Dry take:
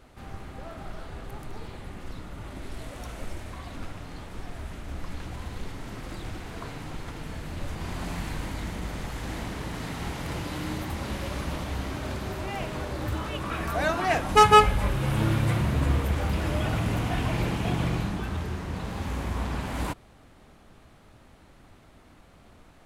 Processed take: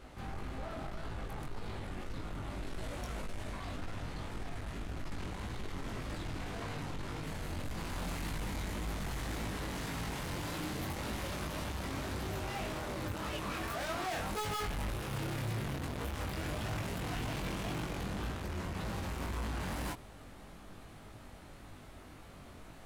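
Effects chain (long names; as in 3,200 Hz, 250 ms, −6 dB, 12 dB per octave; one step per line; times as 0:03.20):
high-shelf EQ 9,900 Hz −3.5 dB, from 0:07.26 +6 dB
soft clipping −38 dBFS, distortion −1 dB
chorus effect 1.8 Hz, delay 18.5 ms, depth 3.4 ms
level +5 dB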